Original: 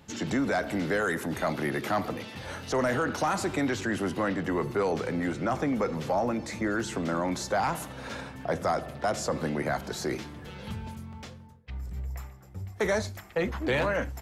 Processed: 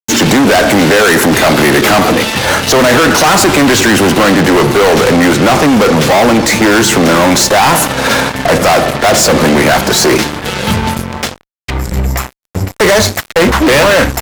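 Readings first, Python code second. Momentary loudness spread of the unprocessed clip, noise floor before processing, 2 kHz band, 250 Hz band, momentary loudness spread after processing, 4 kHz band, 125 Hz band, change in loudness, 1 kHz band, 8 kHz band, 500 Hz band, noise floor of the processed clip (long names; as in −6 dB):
12 LU, −48 dBFS, +22.5 dB, +21.0 dB, 9 LU, +28.0 dB, +20.0 dB, +21.5 dB, +21.0 dB, +27.5 dB, +20.5 dB, −45 dBFS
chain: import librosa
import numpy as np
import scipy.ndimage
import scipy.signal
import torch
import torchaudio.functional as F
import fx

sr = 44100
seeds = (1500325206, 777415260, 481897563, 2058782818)

y = fx.low_shelf(x, sr, hz=150.0, db=-10.0)
y = fx.fuzz(y, sr, gain_db=40.0, gate_db=-46.0)
y = F.gain(torch.from_numpy(y), 7.5).numpy()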